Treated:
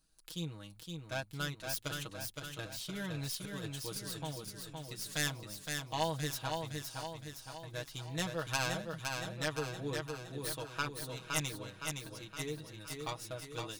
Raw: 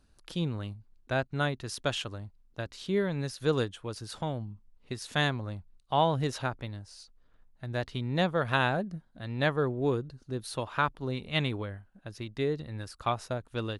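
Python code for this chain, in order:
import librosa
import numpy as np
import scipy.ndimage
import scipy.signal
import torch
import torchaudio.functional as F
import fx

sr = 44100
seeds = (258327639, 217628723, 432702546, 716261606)

y = fx.tracing_dist(x, sr, depth_ms=0.13)
y = librosa.effects.preemphasis(y, coef=0.8, zi=[0.0])
y = y + 0.82 * np.pad(y, (int(6.3 * sr / 1000.0), 0))[:len(y)]
y = fx.over_compress(y, sr, threshold_db=-42.0, ratio=-0.5, at=(1.87, 4.08), fade=0.02)
y = fx.echo_feedback(y, sr, ms=515, feedback_pct=54, wet_db=-4.5)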